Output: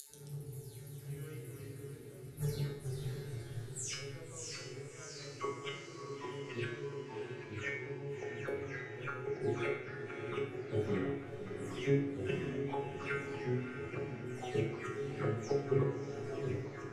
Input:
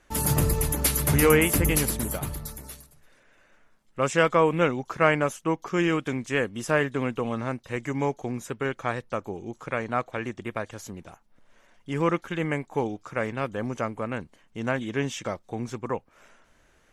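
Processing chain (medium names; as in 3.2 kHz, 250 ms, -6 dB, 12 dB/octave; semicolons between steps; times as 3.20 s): delay that grows with frequency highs early, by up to 321 ms; in parallel at 0 dB: compression, threshold -33 dBFS, peak gain reduction 16.5 dB; on the sum: inverted gate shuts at -20 dBFS, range -28 dB; feedback comb 140 Hz, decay 0.53 s, harmonics all, mix 90%; echo that smears into a reverb 636 ms, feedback 50%, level -8 dB; on a send at -1.5 dB: reverberation RT60 0.85 s, pre-delay 3 ms; on the sum: ever faster or slower copies 135 ms, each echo -2 st, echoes 2, each echo -6 dB; fifteen-band graphic EQ 100 Hz +9 dB, 400 Hz +10 dB, 1 kHz -5 dB, 4 kHz +4 dB; trim +3.5 dB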